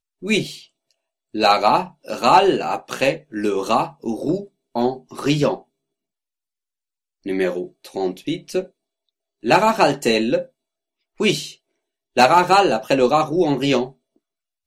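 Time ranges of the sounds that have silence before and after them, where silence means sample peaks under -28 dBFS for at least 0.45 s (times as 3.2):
1.35–5.55
7.26–8.63
9.44–10.42
11.2–11.5
12.17–13.88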